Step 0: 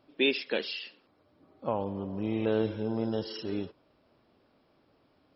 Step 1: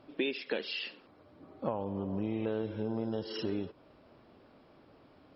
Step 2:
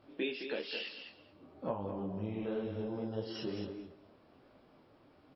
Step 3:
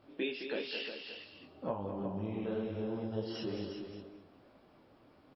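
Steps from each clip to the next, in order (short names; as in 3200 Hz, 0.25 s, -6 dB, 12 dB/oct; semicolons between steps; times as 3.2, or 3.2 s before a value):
LPF 3200 Hz 6 dB/oct; compressor 5:1, threshold -39 dBFS, peak gain reduction 15 dB; gain +7.5 dB
feedback echo 0.214 s, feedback 17%, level -8.5 dB; detuned doubles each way 38 cents
echo 0.359 s -8 dB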